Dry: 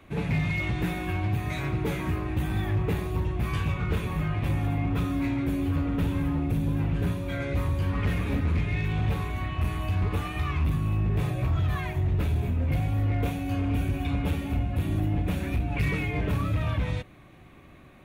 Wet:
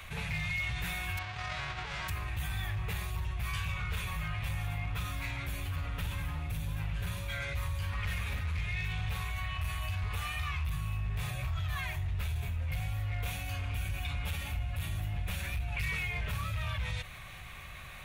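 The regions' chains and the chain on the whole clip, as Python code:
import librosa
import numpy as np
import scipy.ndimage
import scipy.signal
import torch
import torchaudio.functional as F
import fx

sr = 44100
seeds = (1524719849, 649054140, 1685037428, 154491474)

y = fx.envelope_flatten(x, sr, power=0.3, at=(1.17, 2.08), fade=0.02)
y = fx.over_compress(y, sr, threshold_db=-30.0, ratio=-0.5, at=(1.17, 2.08), fade=0.02)
y = fx.spacing_loss(y, sr, db_at_10k=43, at=(1.17, 2.08), fade=0.02)
y = fx.tone_stack(y, sr, knobs='10-0-10')
y = fx.env_flatten(y, sr, amount_pct=50)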